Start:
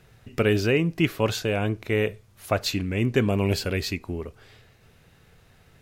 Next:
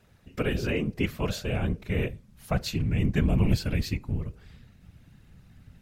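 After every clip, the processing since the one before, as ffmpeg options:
-af "bandreject=f=138.3:t=h:w=4,bandreject=f=276.6:t=h:w=4,bandreject=f=414.9:t=h:w=4,bandreject=f=553.2:t=h:w=4,asubboost=boost=6:cutoff=150,afftfilt=real='hypot(re,im)*cos(2*PI*random(0))':imag='hypot(re,im)*sin(2*PI*random(1))':win_size=512:overlap=0.75"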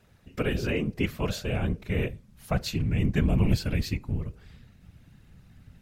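-af anull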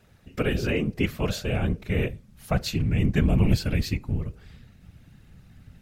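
-af "bandreject=f=1k:w=21,volume=2.5dB"

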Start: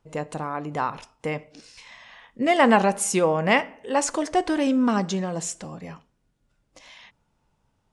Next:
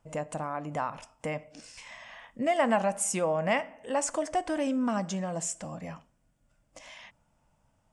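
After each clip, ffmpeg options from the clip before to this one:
-af "equalizer=f=400:t=o:w=0.33:g=-10,equalizer=f=630:t=o:w=0.33:g=7,equalizer=f=4k:t=o:w=0.33:g=-8,equalizer=f=8k:t=o:w=0.33:g=6,acompressor=threshold=-39dB:ratio=1.5"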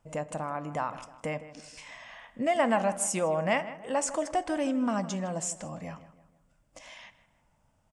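-filter_complex "[0:a]asplit=2[a][b];[b]adelay=158,lowpass=f=2.6k:p=1,volume=-14dB,asplit=2[c][d];[d]adelay=158,lowpass=f=2.6k:p=1,volume=0.44,asplit=2[e][f];[f]adelay=158,lowpass=f=2.6k:p=1,volume=0.44,asplit=2[g][h];[h]adelay=158,lowpass=f=2.6k:p=1,volume=0.44[i];[a][c][e][g][i]amix=inputs=5:normalize=0"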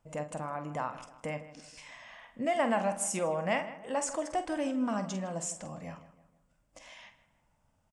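-filter_complex "[0:a]asplit=2[a][b];[b]adelay=47,volume=-10dB[c];[a][c]amix=inputs=2:normalize=0,volume=-3.5dB"

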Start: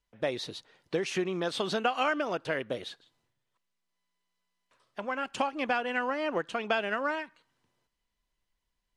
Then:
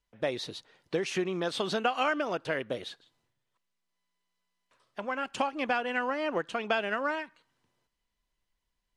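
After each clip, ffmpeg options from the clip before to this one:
-af anull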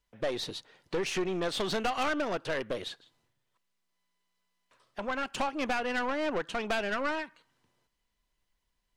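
-af "aeval=exprs='(tanh(28.2*val(0)+0.35)-tanh(0.35))/28.2':c=same,volume=3.5dB"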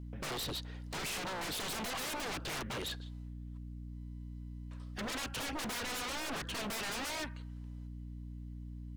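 -filter_complex "[0:a]acrossover=split=5800[a][b];[b]acompressor=threshold=-57dB:ratio=4:attack=1:release=60[c];[a][c]amix=inputs=2:normalize=0,aeval=exprs='val(0)+0.00447*(sin(2*PI*60*n/s)+sin(2*PI*2*60*n/s)/2+sin(2*PI*3*60*n/s)/3+sin(2*PI*4*60*n/s)/4+sin(2*PI*5*60*n/s)/5)':c=same,aeval=exprs='0.0141*(abs(mod(val(0)/0.0141+3,4)-2)-1)':c=same,volume=3.5dB"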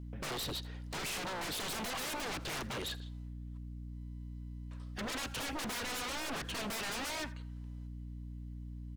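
-af "aecho=1:1:82:0.0944"

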